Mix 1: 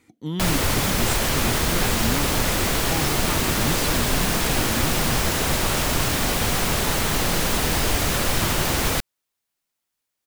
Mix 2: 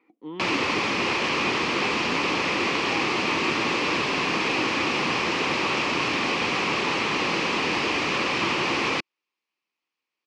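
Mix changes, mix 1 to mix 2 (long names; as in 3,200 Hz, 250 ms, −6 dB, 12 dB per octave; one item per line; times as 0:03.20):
speech: add resonant band-pass 700 Hz, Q 0.89
master: add loudspeaker in its box 250–4,800 Hz, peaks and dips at 330 Hz +4 dB, 650 Hz −7 dB, 1,100 Hz +5 dB, 1,500 Hz −6 dB, 2,500 Hz +8 dB, 3,700 Hz −5 dB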